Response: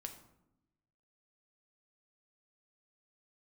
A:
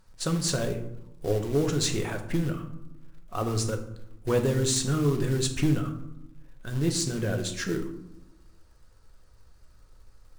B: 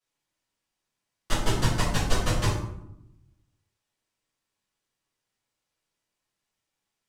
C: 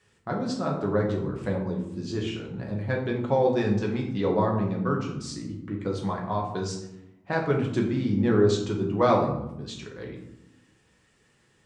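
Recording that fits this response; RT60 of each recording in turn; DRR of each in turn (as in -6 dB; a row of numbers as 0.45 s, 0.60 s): A; 0.85 s, 0.85 s, 0.85 s; 4.5 dB, -11.5 dB, -1.5 dB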